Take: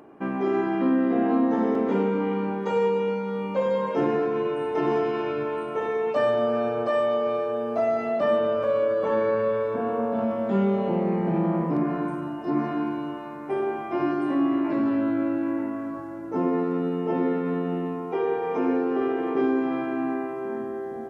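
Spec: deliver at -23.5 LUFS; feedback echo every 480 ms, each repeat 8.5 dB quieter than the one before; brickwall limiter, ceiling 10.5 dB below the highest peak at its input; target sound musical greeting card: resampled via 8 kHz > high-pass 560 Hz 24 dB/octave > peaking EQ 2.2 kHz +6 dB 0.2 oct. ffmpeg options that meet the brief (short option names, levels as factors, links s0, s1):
-af "alimiter=limit=0.0708:level=0:latency=1,aecho=1:1:480|960|1440|1920:0.376|0.143|0.0543|0.0206,aresample=8000,aresample=44100,highpass=f=560:w=0.5412,highpass=f=560:w=1.3066,equalizer=f=2200:t=o:w=0.2:g=6,volume=3.98"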